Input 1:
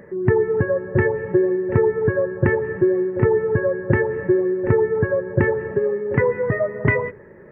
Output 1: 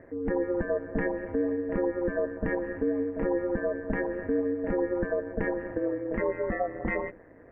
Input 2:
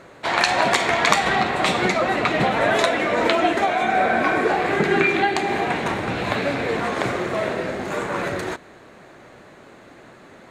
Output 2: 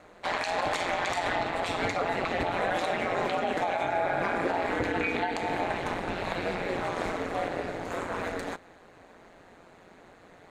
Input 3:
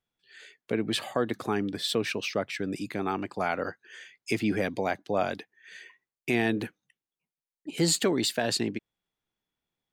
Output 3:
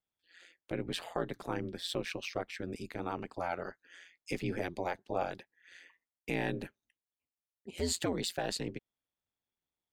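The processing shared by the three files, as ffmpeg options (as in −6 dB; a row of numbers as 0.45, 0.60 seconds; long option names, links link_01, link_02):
-af "equalizer=frequency=730:width_type=o:width=0.49:gain=3.5,aeval=exprs='val(0)*sin(2*PI*88*n/s)':channel_layout=same,alimiter=limit=-12.5dB:level=0:latency=1:release=61,volume=-5.5dB"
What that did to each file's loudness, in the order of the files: −10.0, −9.5, −8.0 LU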